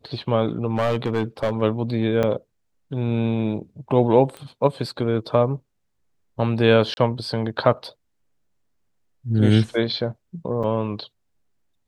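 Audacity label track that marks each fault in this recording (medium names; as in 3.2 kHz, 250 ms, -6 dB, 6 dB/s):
0.750000	1.620000	clipped -16.5 dBFS
2.230000	2.230000	dropout 3.7 ms
4.370000	4.370000	pop -22 dBFS
6.940000	6.970000	dropout 31 ms
10.630000	10.640000	dropout 6.2 ms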